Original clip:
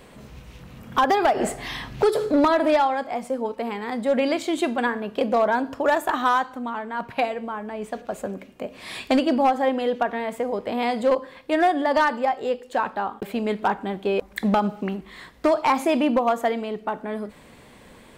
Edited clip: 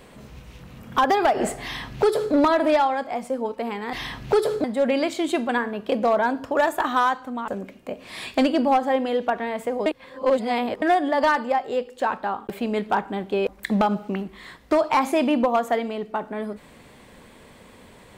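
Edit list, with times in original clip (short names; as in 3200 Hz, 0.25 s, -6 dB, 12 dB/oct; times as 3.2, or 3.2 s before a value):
1.63–2.34 copy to 3.93
6.77–8.21 cut
10.59–11.55 reverse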